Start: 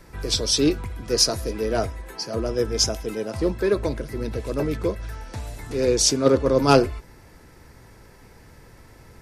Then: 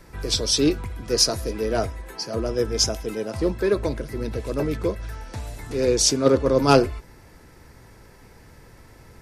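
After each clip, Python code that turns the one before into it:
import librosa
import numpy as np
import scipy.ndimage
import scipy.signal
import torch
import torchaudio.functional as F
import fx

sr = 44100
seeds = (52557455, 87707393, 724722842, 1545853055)

y = x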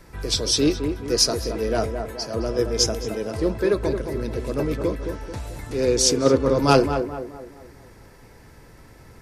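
y = fx.echo_tape(x, sr, ms=217, feedback_pct=49, wet_db=-5, lp_hz=1300.0, drive_db=8.0, wow_cents=24)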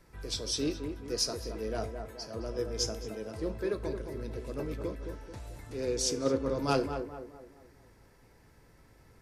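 y = fx.comb_fb(x, sr, f0_hz=54.0, decay_s=0.37, harmonics='all', damping=0.0, mix_pct=50)
y = F.gain(torch.from_numpy(y), -8.5).numpy()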